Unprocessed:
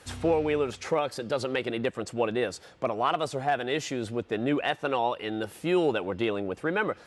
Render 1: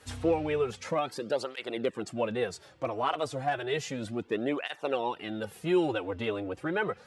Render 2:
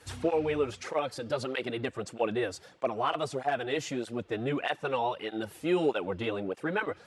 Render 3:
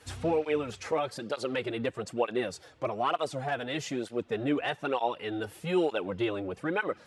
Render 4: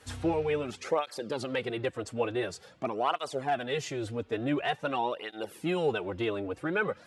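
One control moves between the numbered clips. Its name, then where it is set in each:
through-zero flanger with one copy inverted, nulls at: 0.32, 1.6, 1.1, 0.47 Hertz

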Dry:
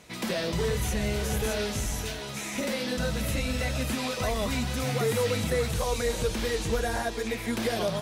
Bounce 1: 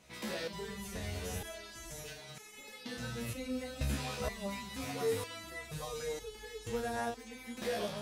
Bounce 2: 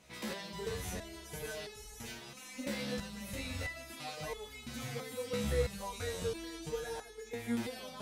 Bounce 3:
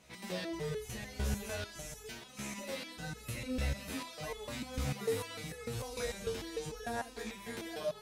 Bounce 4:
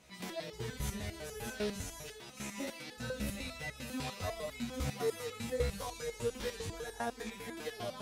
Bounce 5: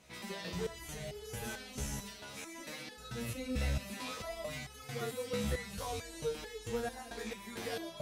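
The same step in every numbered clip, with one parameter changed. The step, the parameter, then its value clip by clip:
step-sequenced resonator, speed: 2.1, 3, 6.7, 10, 4.5 Hertz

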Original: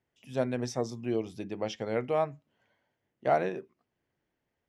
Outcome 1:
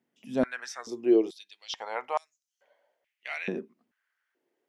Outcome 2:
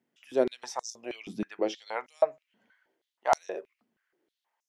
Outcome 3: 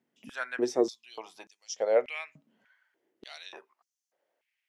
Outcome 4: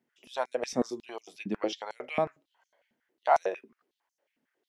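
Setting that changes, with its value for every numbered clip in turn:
high-pass on a step sequencer, speed: 2.3, 6.3, 3.4, 11 Hertz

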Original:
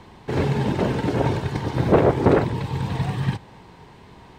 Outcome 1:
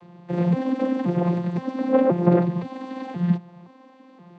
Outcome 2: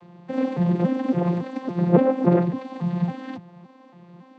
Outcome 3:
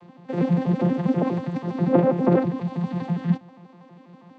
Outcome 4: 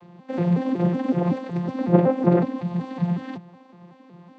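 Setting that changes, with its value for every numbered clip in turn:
vocoder with an arpeggio as carrier, a note every: 523, 280, 81, 186 milliseconds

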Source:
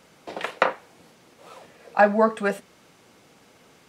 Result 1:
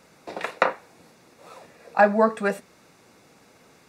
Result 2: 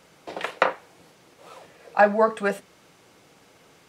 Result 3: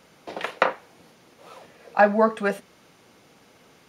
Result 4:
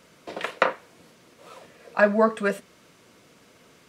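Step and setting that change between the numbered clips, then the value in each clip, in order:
notch filter, centre frequency: 3,100, 230, 7,900, 810 Hertz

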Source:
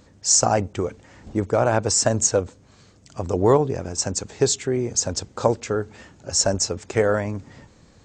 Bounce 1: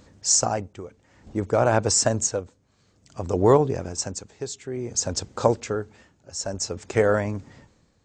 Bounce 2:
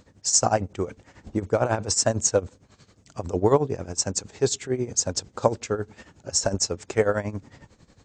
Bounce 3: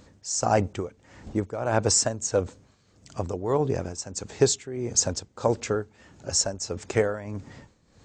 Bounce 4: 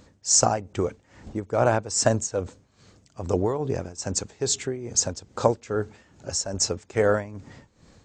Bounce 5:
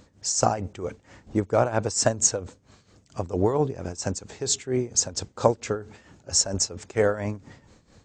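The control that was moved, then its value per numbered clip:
amplitude tremolo, speed: 0.56, 11, 1.6, 2.4, 4.4 Hertz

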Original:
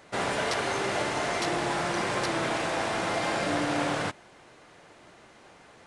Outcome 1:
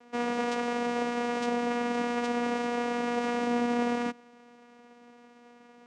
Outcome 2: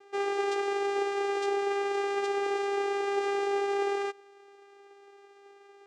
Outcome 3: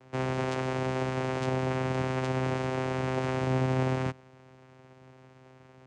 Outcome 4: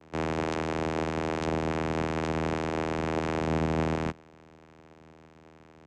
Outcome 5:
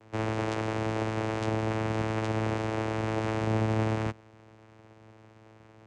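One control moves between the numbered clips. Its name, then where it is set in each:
channel vocoder, frequency: 240, 400, 130, 80, 110 Hertz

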